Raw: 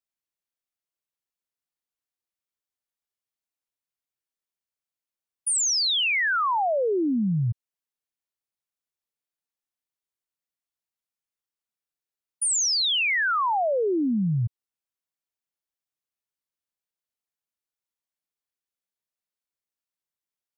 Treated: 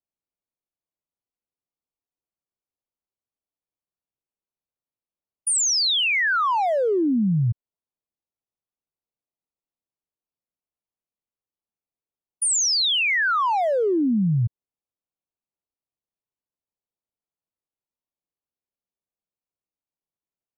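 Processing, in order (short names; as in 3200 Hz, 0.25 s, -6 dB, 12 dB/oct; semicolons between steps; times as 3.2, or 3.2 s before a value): Wiener smoothing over 25 samples; gain +3.5 dB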